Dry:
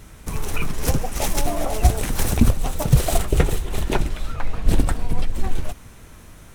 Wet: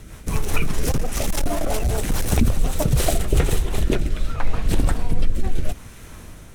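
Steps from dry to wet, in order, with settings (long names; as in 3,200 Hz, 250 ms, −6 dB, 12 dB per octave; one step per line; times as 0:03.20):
brickwall limiter −12 dBFS, peak gain reduction 10 dB
0:00.91–0:02.32: gain into a clipping stage and back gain 19 dB
rotating-speaker cabinet horn 5 Hz, later 0.75 Hz, at 0:02.61
level +5 dB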